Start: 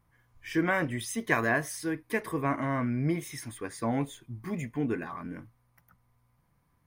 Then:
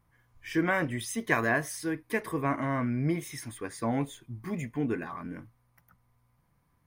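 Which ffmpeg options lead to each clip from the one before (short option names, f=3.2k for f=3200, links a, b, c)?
-af anull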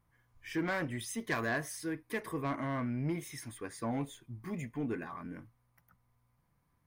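-af "asoftclip=type=tanh:threshold=-21.5dB,volume=-4.5dB"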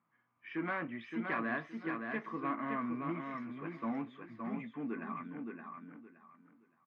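-filter_complex "[0:a]highpass=f=170:w=0.5412,highpass=f=170:w=1.3066,equalizer=f=230:t=q:w=4:g=5,equalizer=f=480:t=q:w=4:g=-4,equalizer=f=1.2k:t=q:w=4:g=9,equalizer=f=2.4k:t=q:w=4:g=3,lowpass=f=2.9k:w=0.5412,lowpass=f=2.9k:w=1.3066,asplit=2[a][b];[b]adelay=18,volume=-13.5dB[c];[a][c]amix=inputs=2:normalize=0,aecho=1:1:569|1138|1707:0.562|0.135|0.0324,volume=-4.5dB"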